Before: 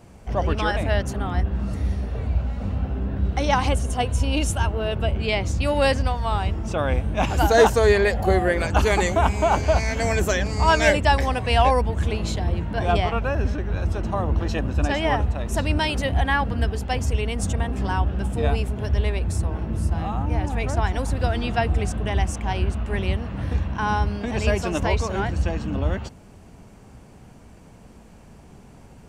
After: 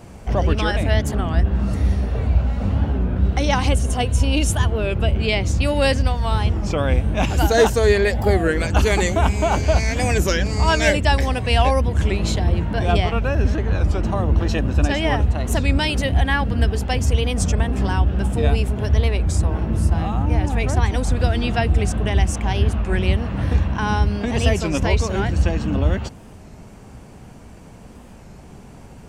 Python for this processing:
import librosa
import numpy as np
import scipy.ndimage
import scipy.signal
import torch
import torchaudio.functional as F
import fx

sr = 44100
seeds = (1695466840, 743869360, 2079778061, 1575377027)

p1 = fx.dynamic_eq(x, sr, hz=960.0, q=0.8, threshold_db=-33.0, ratio=4.0, max_db=-6)
p2 = fx.rider(p1, sr, range_db=10, speed_s=0.5)
p3 = p1 + (p2 * 10.0 ** (-3.0 / 20.0))
y = fx.record_warp(p3, sr, rpm=33.33, depth_cents=160.0)